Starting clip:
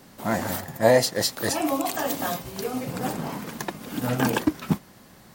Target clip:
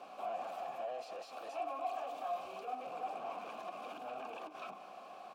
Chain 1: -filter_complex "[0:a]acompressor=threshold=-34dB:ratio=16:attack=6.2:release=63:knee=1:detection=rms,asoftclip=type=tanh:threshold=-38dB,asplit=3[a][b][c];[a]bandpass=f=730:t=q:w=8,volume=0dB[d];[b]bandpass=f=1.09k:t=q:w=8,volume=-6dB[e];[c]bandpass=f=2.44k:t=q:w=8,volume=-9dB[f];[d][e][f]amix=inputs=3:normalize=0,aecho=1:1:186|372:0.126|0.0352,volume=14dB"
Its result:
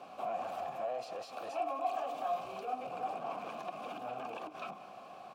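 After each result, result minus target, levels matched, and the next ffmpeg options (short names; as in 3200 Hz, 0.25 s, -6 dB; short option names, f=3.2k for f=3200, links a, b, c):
125 Hz band +6.5 dB; soft clip: distortion -3 dB
-filter_complex "[0:a]acompressor=threshold=-34dB:ratio=16:attack=6.2:release=63:knee=1:detection=rms,equalizer=f=110:w=1.2:g=-15,asoftclip=type=tanh:threshold=-38dB,asplit=3[a][b][c];[a]bandpass=f=730:t=q:w=8,volume=0dB[d];[b]bandpass=f=1.09k:t=q:w=8,volume=-6dB[e];[c]bandpass=f=2.44k:t=q:w=8,volume=-9dB[f];[d][e][f]amix=inputs=3:normalize=0,aecho=1:1:186|372:0.126|0.0352,volume=14dB"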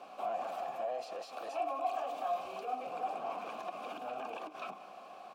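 soft clip: distortion -4 dB
-filter_complex "[0:a]acompressor=threshold=-34dB:ratio=16:attack=6.2:release=63:knee=1:detection=rms,equalizer=f=110:w=1.2:g=-15,asoftclip=type=tanh:threshold=-44dB,asplit=3[a][b][c];[a]bandpass=f=730:t=q:w=8,volume=0dB[d];[b]bandpass=f=1.09k:t=q:w=8,volume=-6dB[e];[c]bandpass=f=2.44k:t=q:w=8,volume=-9dB[f];[d][e][f]amix=inputs=3:normalize=0,aecho=1:1:186|372:0.126|0.0352,volume=14dB"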